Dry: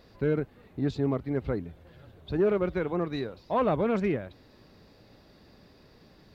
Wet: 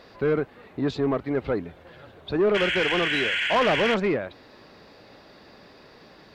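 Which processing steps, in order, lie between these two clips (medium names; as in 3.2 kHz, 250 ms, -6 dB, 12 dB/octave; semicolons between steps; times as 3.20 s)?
painted sound noise, 2.54–3.95 s, 1.4–3.4 kHz -34 dBFS; overdrive pedal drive 17 dB, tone 2.7 kHz, clips at -14 dBFS; trim +1 dB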